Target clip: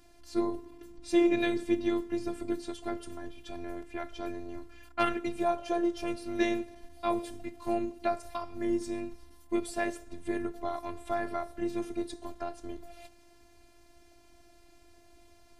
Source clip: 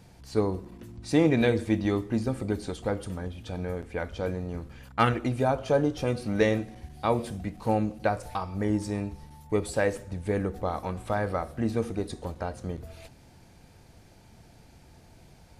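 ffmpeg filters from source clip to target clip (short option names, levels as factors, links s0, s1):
-af "afftfilt=real='hypot(re,im)*cos(PI*b)':imag='0':win_size=512:overlap=0.75"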